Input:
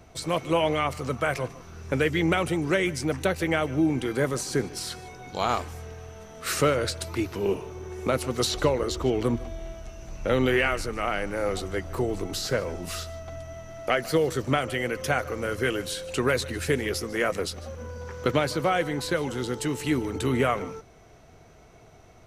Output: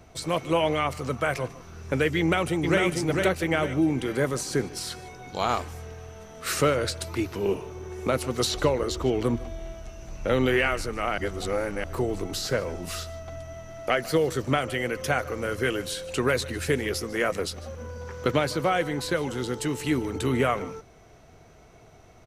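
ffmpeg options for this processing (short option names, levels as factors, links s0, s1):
-filter_complex "[0:a]asplit=2[s0][s1];[s1]afade=t=in:st=2.18:d=0.01,afade=t=out:st=2.83:d=0.01,aecho=0:1:450|900|1350|1800|2250:0.668344|0.267338|0.106935|0.042774|0.0171096[s2];[s0][s2]amix=inputs=2:normalize=0,asplit=3[s3][s4][s5];[s3]atrim=end=11.182[s6];[s4]atrim=start=11.178:end=11.842,asetpts=PTS-STARTPTS,areverse[s7];[s5]atrim=start=11.838[s8];[s6][s7]acrossfade=d=0.004:c1=hsin:c2=hsin[s9];[s9][s8]acrossfade=d=0.004:c1=hsin:c2=hsin"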